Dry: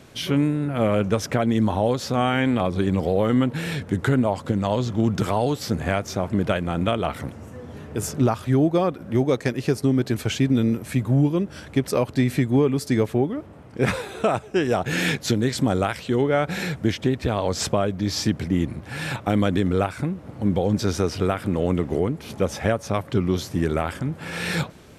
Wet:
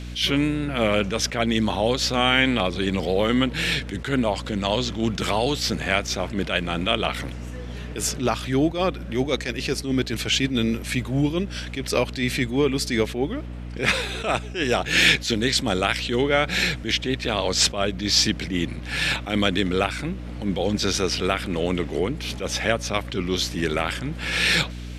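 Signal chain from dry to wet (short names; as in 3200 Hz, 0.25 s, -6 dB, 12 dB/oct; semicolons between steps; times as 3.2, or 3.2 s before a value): weighting filter D; hum 60 Hz, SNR 11 dB; attack slew limiter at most 130 dB/s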